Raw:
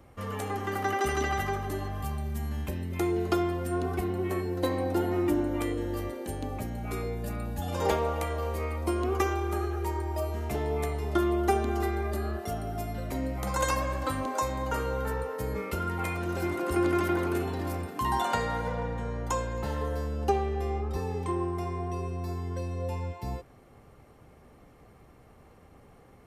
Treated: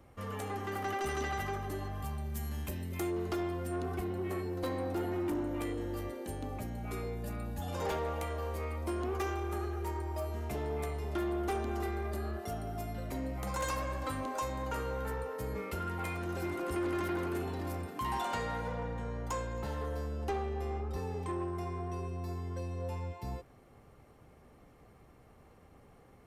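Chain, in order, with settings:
0:02.33–0:03.09: high-shelf EQ 3,600 Hz → 5,500 Hz +9 dB
soft clipping −25 dBFS, distortion −14 dB
level −4 dB

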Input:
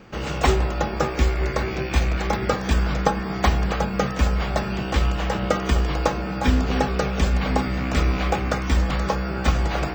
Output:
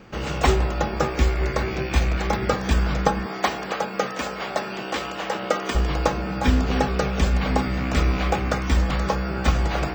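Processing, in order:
0:03.26–0:05.75: high-pass filter 310 Hz 12 dB per octave

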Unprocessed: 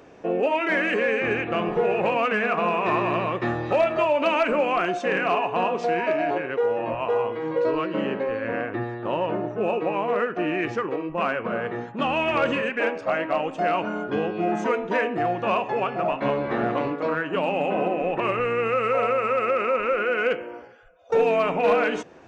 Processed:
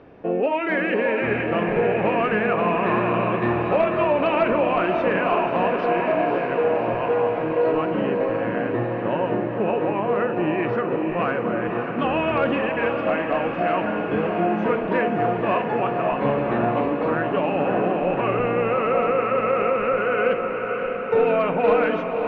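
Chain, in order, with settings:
Bessel low-pass filter 2,700 Hz, order 8
low-shelf EQ 220 Hz +6.5 dB
feedback delay with all-pass diffusion 577 ms, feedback 70%, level −6 dB

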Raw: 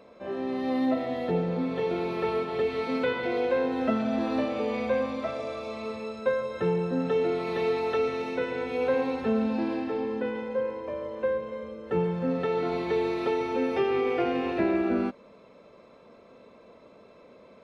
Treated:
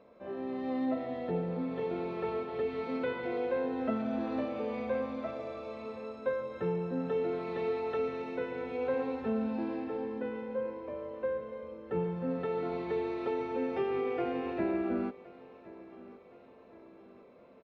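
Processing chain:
low-pass filter 2,100 Hz 6 dB per octave
on a send: repeating echo 1,068 ms, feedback 51%, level −19.5 dB
on the sum: level −6 dB

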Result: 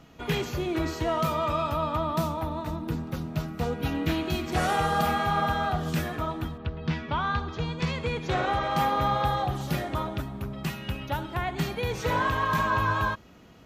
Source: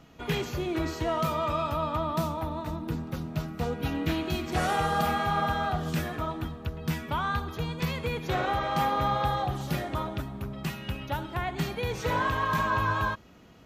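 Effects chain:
0:06.57–0:08.68: low-pass filter 4,000 Hz → 11,000 Hz 24 dB per octave
level +1.5 dB

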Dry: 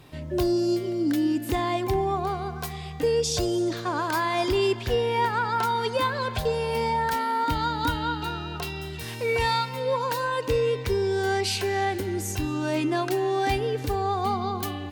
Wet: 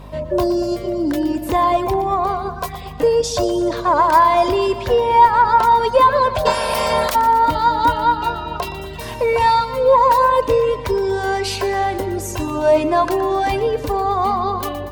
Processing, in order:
0:06.45–0:07.14: ceiling on every frequency bin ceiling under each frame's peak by 30 dB
reverb reduction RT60 0.71 s
in parallel at −2 dB: brickwall limiter −21.5 dBFS, peak gain reduction 9.5 dB
on the sum: mains hum 50 Hz, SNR 13 dB
hollow resonant body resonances 610/970 Hz, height 15 dB, ringing for 20 ms
harmonic generator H 4 −32 dB, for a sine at −1 dBFS
on a send: echo with a time of its own for lows and highs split 500 Hz, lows 196 ms, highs 119 ms, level −13 dB
on the sum: level −1 dB

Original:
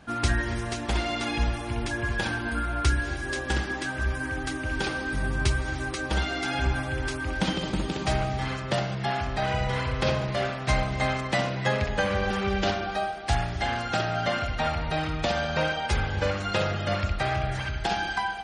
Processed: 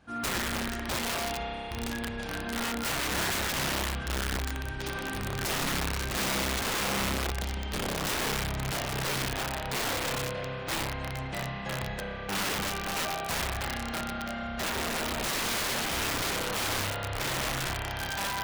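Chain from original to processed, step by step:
sample-and-hold tremolo, depth 85%
spring reverb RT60 4 s, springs 30 ms, chirp 25 ms, DRR −6 dB
wrap-around overflow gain 20 dB
level −5.5 dB

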